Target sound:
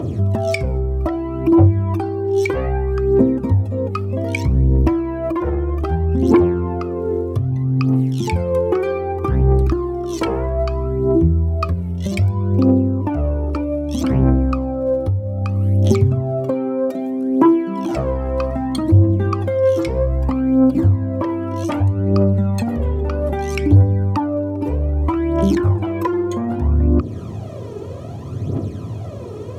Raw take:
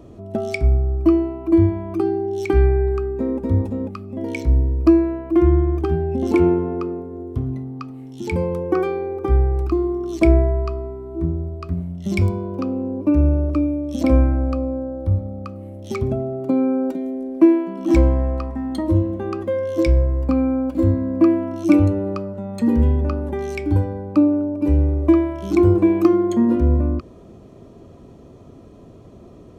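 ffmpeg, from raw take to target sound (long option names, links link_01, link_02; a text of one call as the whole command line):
ffmpeg -i in.wav -af "aeval=exprs='0.794*sin(PI/2*2.51*val(0)/0.794)':channel_layout=same,highpass=frequency=81:width=0.5412,highpass=frequency=81:width=1.3066,equalizer=frequency=110:width_type=o:width=0.57:gain=10,bandreject=frequency=60:width_type=h:width=6,bandreject=frequency=120:width_type=h:width=6,bandreject=frequency=180:width_type=h:width=6,bandreject=frequency=240:width_type=h:width=6,bandreject=frequency=300:width_type=h:width=6,acompressor=threshold=-18dB:ratio=5,aphaser=in_gain=1:out_gain=1:delay=2.4:decay=0.63:speed=0.63:type=triangular" out.wav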